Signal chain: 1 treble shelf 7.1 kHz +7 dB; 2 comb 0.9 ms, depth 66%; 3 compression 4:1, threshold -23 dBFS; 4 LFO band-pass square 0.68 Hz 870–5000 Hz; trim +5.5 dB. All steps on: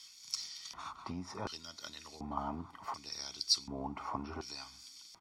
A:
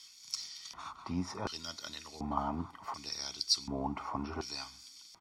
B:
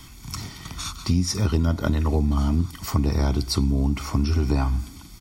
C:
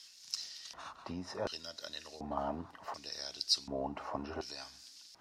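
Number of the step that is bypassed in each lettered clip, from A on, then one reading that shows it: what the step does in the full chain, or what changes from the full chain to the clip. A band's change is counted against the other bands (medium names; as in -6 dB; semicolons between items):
3, mean gain reduction 2.5 dB; 4, 125 Hz band +17.5 dB; 2, 500 Hz band +7.5 dB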